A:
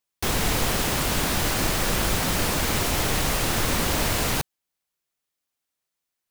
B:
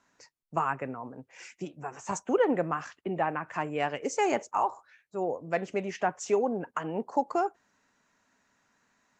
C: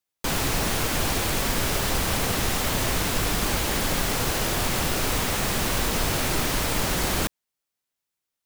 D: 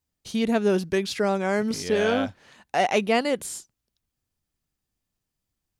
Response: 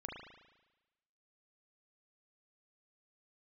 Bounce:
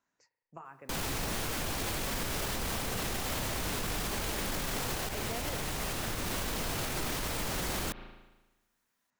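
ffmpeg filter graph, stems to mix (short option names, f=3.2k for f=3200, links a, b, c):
-filter_complex "[0:a]adelay=2500,volume=-10.5dB,asplit=2[a][b];[b]volume=-4.5dB[c];[1:a]acompressor=threshold=-30dB:ratio=6,volume=-15.5dB,asplit=2[d][e];[e]volume=-7.5dB[f];[2:a]adelay=650,volume=2dB,asplit=3[g][h][i];[g]atrim=end=5.09,asetpts=PTS-STARTPTS,afade=t=out:st=5.086:d=0.004:c=hsin[j];[h]atrim=start=5.09:end=6.26,asetpts=PTS-STARTPTS,volume=0[k];[i]atrim=start=6.26,asetpts=PTS-STARTPTS,afade=t=in:d=0.004:c=hsin[l];[j][k][l]concat=n=3:v=0:a=1,asplit=2[m][n];[n]volume=-16dB[o];[3:a]adelay=2200,volume=-16dB[p];[4:a]atrim=start_sample=2205[q];[c][f][o]amix=inputs=3:normalize=0[r];[r][q]afir=irnorm=-1:irlink=0[s];[a][d][m][p][s]amix=inputs=5:normalize=0,alimiter=level_in=1dB:limit=-24dB:level=0:latency=1:release=102,volume=-1dB"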